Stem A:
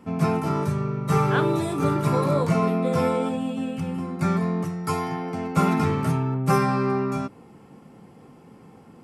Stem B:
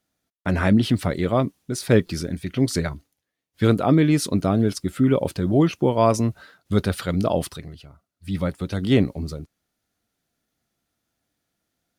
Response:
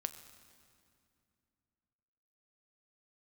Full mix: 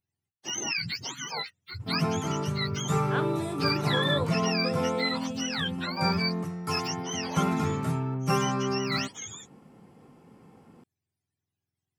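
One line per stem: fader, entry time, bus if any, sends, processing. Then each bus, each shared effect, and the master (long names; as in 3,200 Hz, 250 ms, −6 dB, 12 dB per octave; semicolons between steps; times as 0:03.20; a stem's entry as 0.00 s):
−5.5 dB, 1.80 s, no send, no processing
0.0 dB, 0.00 s, no send, frequency axis turned over on the octave scale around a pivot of 730 Hz; first-order pre-emphasis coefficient 0.8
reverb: not used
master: no processing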